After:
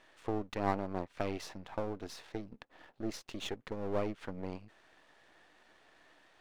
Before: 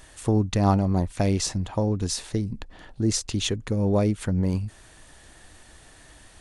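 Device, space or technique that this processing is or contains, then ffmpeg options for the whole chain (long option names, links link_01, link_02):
crystal radio: -af "highpass=340,lowpass=2900,aeval=exprs='if(lt(val(0),0),0.251*val(0),val(0))':channel_layout=same,volume=-5dB"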